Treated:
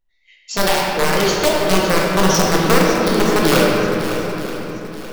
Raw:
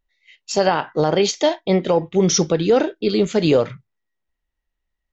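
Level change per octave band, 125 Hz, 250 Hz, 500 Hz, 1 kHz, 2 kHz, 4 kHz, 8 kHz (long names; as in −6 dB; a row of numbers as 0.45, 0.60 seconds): +3.0 dB, +2.5 dB, +1.0 dB, +6.0 dB, +11.0 dB, +5.5 dB, can't be measured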